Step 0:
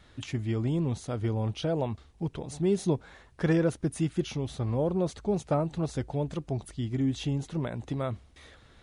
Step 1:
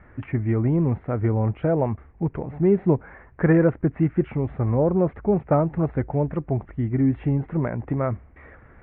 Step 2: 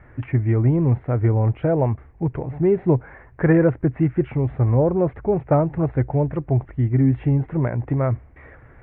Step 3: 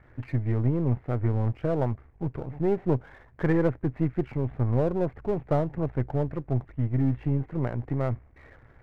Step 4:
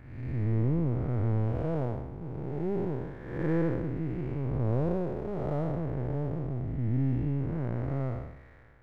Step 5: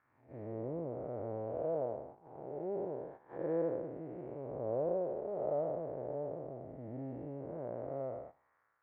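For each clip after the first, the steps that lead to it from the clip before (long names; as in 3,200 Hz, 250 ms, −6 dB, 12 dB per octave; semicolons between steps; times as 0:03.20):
Butterworth low-pass 2,200 Hz 48 dB per octave; level +7.5 dB
thirty-one-band graphic EQ 125 Hz +6 dB, 200 Hz −7 dB, 1,250 Hz −3 dB; level +2 dB
gain on one half-wave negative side −7 dB; level −5 dB
spectrum smeared in time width 318 ms
envelope filter 590–1,300 Hz, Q 3.2, down, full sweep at −30.5 dBFS; noise gate −53 dBFS, range −11 dB; level +3 dB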